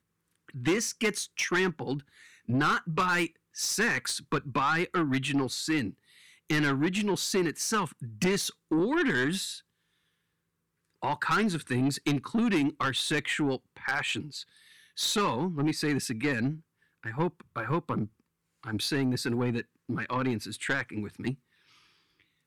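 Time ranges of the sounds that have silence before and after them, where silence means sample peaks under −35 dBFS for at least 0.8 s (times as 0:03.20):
0:11.03–0:21.33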